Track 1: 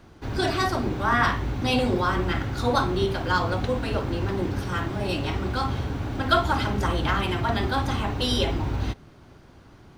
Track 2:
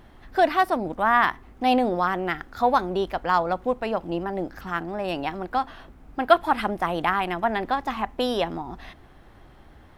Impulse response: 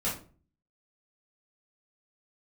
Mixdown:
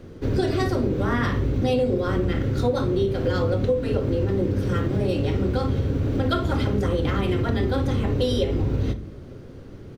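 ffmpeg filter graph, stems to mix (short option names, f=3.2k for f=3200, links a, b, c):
-filter_complex "[0:a]lowshelf=f=620:t=q:w=3:g=7,volume=0dB,asplit=2[a][b];[b]volume=-16.5dB[c];[1:a]adelay=6.7,volume=-11.5dB,asplit=2[d][e];[e]volume=-7dB[f];[2:a]atrim=start_sample=2205[g];[c][f]amix=inputs=2:normalize=0[h];[h][g]afir=irnorm=-1:irlink=0[i];[a][d][i]amix=inputs=3:normalize=0,acompressor=threshold=-19dB:ratio=6"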